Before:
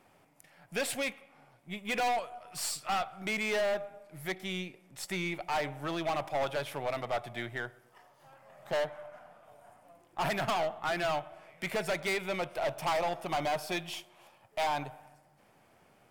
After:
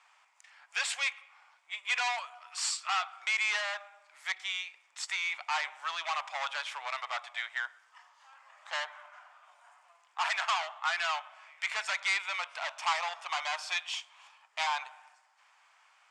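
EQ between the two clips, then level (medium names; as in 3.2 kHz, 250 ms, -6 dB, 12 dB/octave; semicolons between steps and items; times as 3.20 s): elliptic band-pass 1–7.5 kHz, stop band 60 dB; +5.0 dB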